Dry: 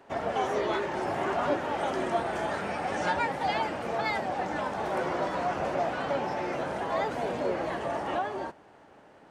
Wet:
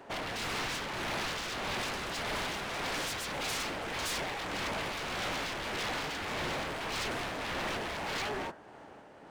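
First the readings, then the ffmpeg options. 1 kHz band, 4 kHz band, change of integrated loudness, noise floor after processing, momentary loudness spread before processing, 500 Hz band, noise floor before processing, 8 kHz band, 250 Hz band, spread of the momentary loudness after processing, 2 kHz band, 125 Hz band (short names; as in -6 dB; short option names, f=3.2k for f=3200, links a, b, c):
-8.0 dB, +6.5 dB, -4.5 dB, -52 dBFS, 3 LU, -10.0 dB, -55 dBFS, +9.0 dB, -6.5 dB, 2 LU, -0.5 dB, -2.5 dB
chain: -af "aeval=exprs='0.02*(abs(mod(val(0)/0.02+3,4)-2)-1)':c=same,bandreject=f=80.61:t=h:w=4,bandreject=f=161.22:t=h:w=4,bandreject=f=241.83:t=h:w=4,bandreject=f=322.44:t=h:w=4,bandreject=f=403.05:t=h:w=4,bandreject=f=483.66:t=h:w=4,bandreject=f=564.27:t=h:w=4,bandreject=f=644.88:t=h:w=4,bandreject=f=725.49:t=h:w=4,bandreject=f=806.1:t=h:w=4,bandreject=f=886.71:t=h:w=4,bandreject=f=967.32:t=h:w=4,bandreject=f=1.04793k:t=h:w=4,bandreject=f=1.12854k:t=h:w=4,bandreject=f=1.20915k:t=h:w=4,bandreject=f=1.28976k:t=h:w=4,bandreject=f=1.37037k:t=h:w=4,bandreject=f=1.45098k:t=h:w=4,bandreject=f=1.53159k:t=h:w=4,bandreject=f=1.6122k:t=h:w=4,bandreject=f=1.69281k:t=h:w=4,bandreject=f=1.77342k:t=h:w=4,bandreject=f=1.85403k:t=h:w=4,bandreject=f=1.93464k:t=h:w=4,tremolo=f=1.7:d=0.32,volume=4.5dB"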